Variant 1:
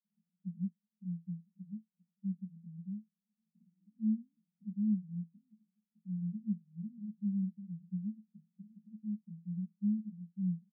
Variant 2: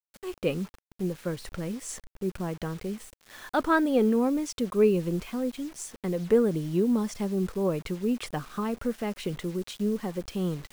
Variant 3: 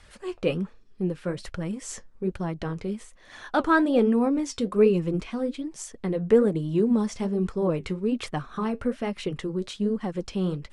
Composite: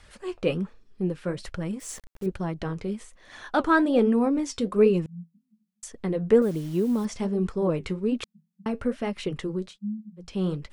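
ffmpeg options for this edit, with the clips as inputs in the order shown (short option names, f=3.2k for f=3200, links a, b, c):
-filter_complex "[1:a]asplit=2[a][b];[0:a]asplit=3[c][d][e];[2:a]asplit=6[f][g][h][i][j][k];[f]atrim=end=1.802[l];[a]atrim=start=1.798:end=2.262[m];[g]atrim=start=2.258:end=5.062[n];[c]atrim=start=5.058:end=5.832[o];[h]atrim=start=5.828:end=6.422[p];[b]atrim=start=6.418:end=7.052[q];[i]atrim=start=7.048:end=8.242[r];[d]atrim=start=8.238:end=8.662[s];[j]atrim=start=8.658:end=9.79[t];[e]atrim=start=9.55:end=10.4[u];[k]atrim=start=10.16[v];[l][m]acrossfade=d=0.004:c1=hsin:c2=hsin[w];[w][n]acrossfade=d=0.004:c1=hsin:c2=hsin[x];[x][o]acrossfade=d=0.004:c1=hsin:c2=hsin[y];[y][p]acrossfade=d=0.004:c1=hsin:c2=hsin[z];[z][q]acrossfade=d=0.004:c1=hsin:c2=hsin[aa];[aa][r]acrossfade=d=0.004:c1=hsin:c2=hsin[ab];[ab][s]acrossfade=d=0.004:c1=hsin:c2=hsin[ac];[ac][t]acrossfade=d=0.004:c1=hsin:c2=hsin[ad];[ad][u]acrossfade=d=0.24:c1=tri:c2=tri[ae];[ae][v]acrossfade=d=0.24:c1=tri:c2=tri"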